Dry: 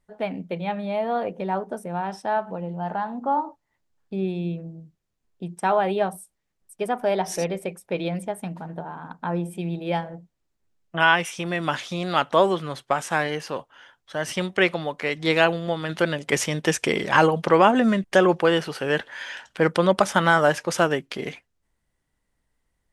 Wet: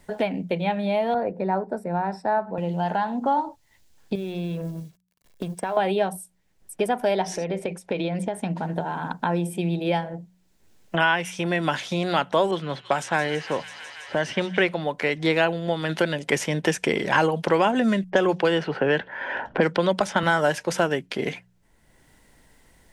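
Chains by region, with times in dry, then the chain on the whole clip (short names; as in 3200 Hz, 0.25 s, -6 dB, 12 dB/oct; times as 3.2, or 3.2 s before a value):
1.14–2.58 running mean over 14 samples + three-band expander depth 40%
4.15–5.77 G.711 law mismatch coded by A + compressor 3:1, threshold -36 dBFS + comb 1.8 ms, depth 36%
7.25–8.63 LPF 7000 Hz + compressor, threshold -28 dBFS
12.51–14.65 low-pass opened by the level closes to 600 Hz, open at -19.5 dBFS + HPF 52 Hz + thin delay 0.164 s, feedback 70%, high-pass 2300 Hz, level -10.5 dB
18.1–20.23 low-pass opened by the level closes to 640 Hz, open at -13.5 dBFS + three-band squash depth 70%
whole clip: notch 1200 Hz, Q 7.3; de-hum 60.64 Hz, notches 3; three-band squash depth 70%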